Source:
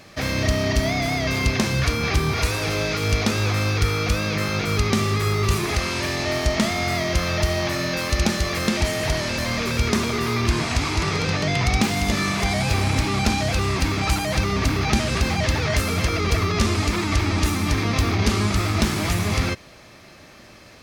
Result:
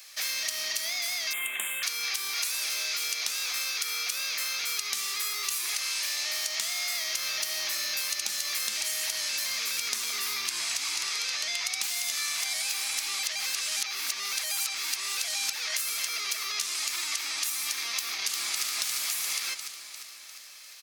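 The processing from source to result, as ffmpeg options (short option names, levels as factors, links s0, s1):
-filter_complex "[0:a]asettb=1/sr,asplit=3[s0][s1][s2];[s0]atrim=end=1.334[s3];[s1]atrim=start=1.33:end=1.83,asetpts=PTS-STARTPTS,afade=t=in:d=0.004:c=qsin,afade=t=out:st=0.496:d=0.004:c=qsin,asuperstop=centerf=5100:order=12:qfactor=1.3[s4];[s2]atrim=start=1.826[s5];[s3][s4]acrossfade=d=0.004:c1=hsin:c2=qsin[s6];[s6][s5]acrossfade=d=0.004:c1=qsin:c2=hsin,asettb=1/sr,asplit=3[s7][s8][s9];[s7]atrim=end=7.144[s10];[s8]atrim=start=7.14:end=11.07,asetpts=PTS-STARTPTS,afade=t=in:d=0.004:c=qsin,afade=t=out:st=3.926:d=0.004:c=qsin,lowshelf=f=220:g=11.5[s11];[s9]atrim=start=11.066[s12];[s10][s11]acrossfade=d=0.004:c1=hsin:c2=qsin[s13];[s13][s12]acrossfade=d=0.004:c1=qsin:c2=hsin,asettb=1/sr,asplit=3[s14][s15][s16];[s14]atrim=end=16.124[s17];[s15]atrim=start=16.12:end=17.05,asetpts=PTS-STARTPTS,afade=t=in:d=0.004:c=qsin,afade=t=out:st=0.926:d=0.004:c=qsin,highpass=f=160:w=0.5412,highpass=f=160:w=1.3066[s18];[s16]atrim=start=17.046[s19];[s17][s18]acrossfade=d=0.004:c1=hsin:c2=qsin[s20];[s20][s19]acrossfade=d=0.004:c1=qsin:c2=hsin,asplit=2[s21][s22];[s22]afade=t=in:st=17.98:d=0.01,afade=t=out:st=18.62:d=0.01,aecho=0:1:350|700|1050|1400|1750|2100|2450|2800:0.841395|0.462767|0.254522|0.139987|0.0769929|0.0423461|0.0232904|0.0128097[s23];[s21][s23]amix=inputs=2:normalize=0,asplit=3[s24][s25][s26];[s24]atrim=end=13.232[s27];[s25]atrim=start=13.228:end=15.532,asetpts=PTS-STARTPTS,areverse[s28];[s26]atrim=start=15.528[s29];[s27][s28]acrossfade=d=0.004:c1=hsin:c2=hsin[s30];[s30][s29]acrossfade=d=0.004:c1=hsin:c2=hsin,highpass=f=1100:p=1,aderivative,acompressor=threshold=0.02:ratio=6,volume=2.24"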